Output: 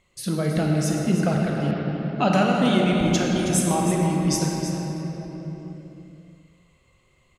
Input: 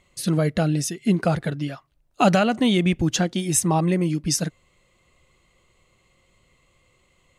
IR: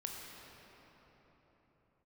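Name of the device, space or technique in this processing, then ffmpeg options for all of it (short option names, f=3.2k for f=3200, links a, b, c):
cave: -filter_complex "[0:a]aecho=1:1:320:0.316[a];[1:a]atrim=start_sample=2205[b];[a][b]afir=irnorm=-1:irlink=0,asettb=1/sr,asplit=3[c][d][e];[c]atrim=end=1.714[f];[d]atrim=start=1.71:end=2.33,asetpts=PTS-STARTPTS,afade=t=in:d=0.004:c=qsin,afade=t=out:st=0.616:d=0.004:c=qsin,lowpass=f=5.1k:w=0.5412,lowpass=f=5.1k:w=1.3066[g];[e]atrim=start=2.326[h];[f][g]acrossfade=d=0.004:c1=hsin:c2=qsin[i];[i][h]acrossfade=d=0.004:c1=qsin:c2=hsin"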